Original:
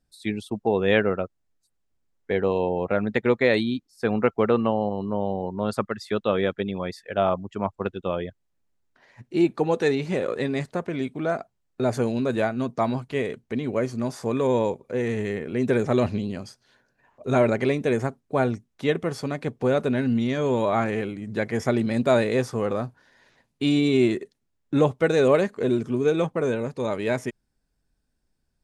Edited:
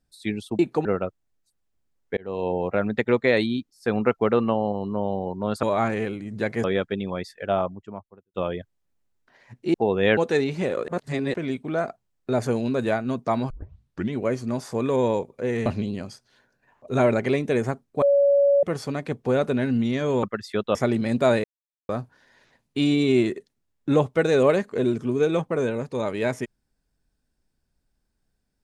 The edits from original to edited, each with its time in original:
0:00.59–0:01.02: swap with 0:09.42–0:09.68
0:02.34–0:02.70: fade in
0:05.80–0:06.32: swap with 0:20.59–0:21.60
0:07.01–0:08.02: fade out and dull
0:10.39–0:10.85: reverse
0:13.01: tape start 0.64 s
0:15.17–0:16.02: remove
0:18.38–0:18.99: beep over 564 Hz −14.5 dBFS
0:22.29–0:22.74: silence

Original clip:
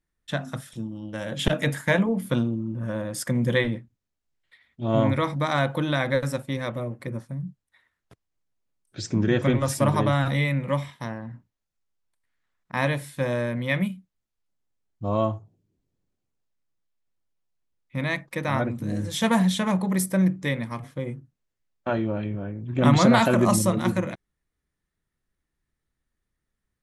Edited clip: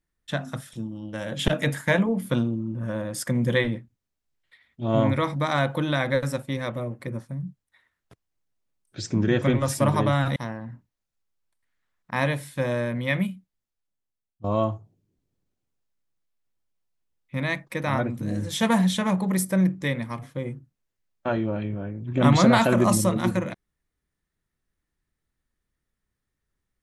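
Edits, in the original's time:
0:10.36–0:10.97: remove
0:13.92–0:15.05: fade out, to −16.5 dB

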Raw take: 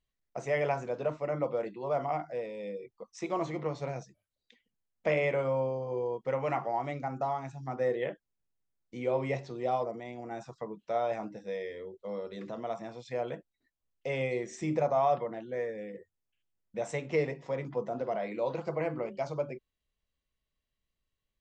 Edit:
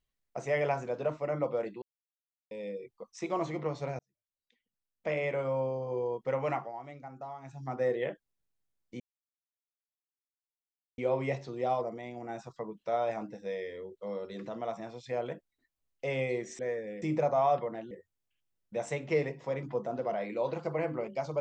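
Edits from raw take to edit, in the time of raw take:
0:01.82–0:02.51: silence
0:03.99–0:05.85: fade in
0:06.50–0:07.62: duck −10.5 dB, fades 0.22 s
0:09.00: splice in silence 1.98 s
0:15.50–0:15.93: move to 0:14.61

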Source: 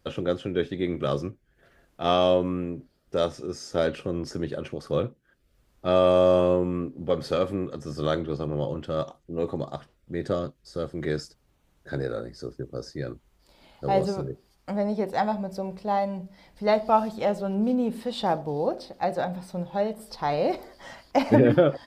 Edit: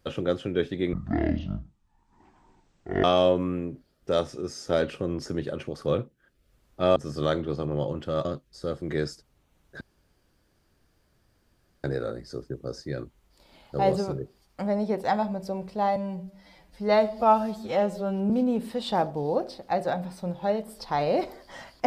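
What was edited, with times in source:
0:00.93–0:02.09: play speed 55%
0:06.01–0:07.77: remove
0:09.06–0:10.37: remove
0:11.93: splice in room tone 2.03 s
0:16.05–0:17.61: time-stretch 1.5×

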